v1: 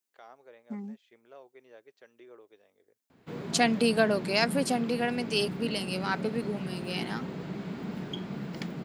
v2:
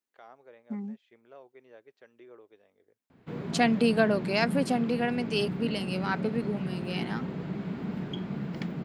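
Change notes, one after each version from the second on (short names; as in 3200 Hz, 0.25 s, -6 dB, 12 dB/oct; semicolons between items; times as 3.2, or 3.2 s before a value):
master: add tone controls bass +4 dB, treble -8 dB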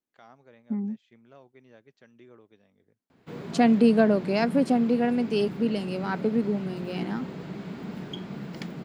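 first voice: add resonant low shelf 280 Hz +13 dB, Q 1.5; second voice: add tilt -4 dB/oct; master: add tone controls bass -4 dB, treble +8 dB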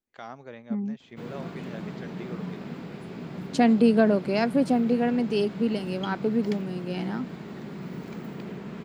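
first voice +11.5 dB; background: entry -2.10 s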